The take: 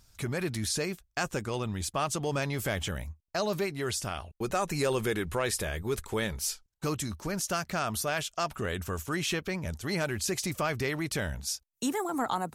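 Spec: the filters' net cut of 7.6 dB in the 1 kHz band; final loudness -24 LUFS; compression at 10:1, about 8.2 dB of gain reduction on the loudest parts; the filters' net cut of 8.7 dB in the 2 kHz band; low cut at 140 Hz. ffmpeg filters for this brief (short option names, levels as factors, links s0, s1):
-af "highpass=140,equalizer=f=1000:t=o:g=-8.5,equalizer=f=2000:t=o:g=-8.5,acompressor=threshold=0.0178:ratio=10,volume=5.96"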